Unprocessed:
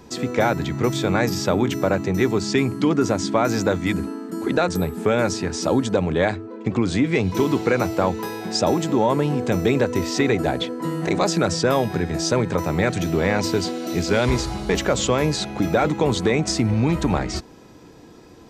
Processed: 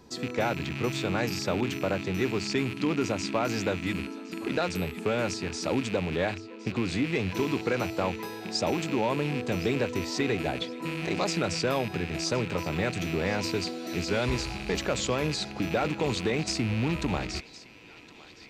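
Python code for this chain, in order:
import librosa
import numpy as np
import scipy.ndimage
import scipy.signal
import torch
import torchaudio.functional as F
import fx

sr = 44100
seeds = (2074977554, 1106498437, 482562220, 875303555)

p1 = fx.rattle_buzz(x, sr, strikes_db=-29.0, level_db=-18.0)
p2 = fx.peak_eq(p1, sr, hz=4400.0, db=5.0, octaves=0.36)
p3 = p2 + fx.echo_banded(p2, sr, ms=1064, feedback_pct=60, hz=2900.0, wet_db=-15, dry=0)
y = p3 * librosa.db_to_amplitude(-8.5)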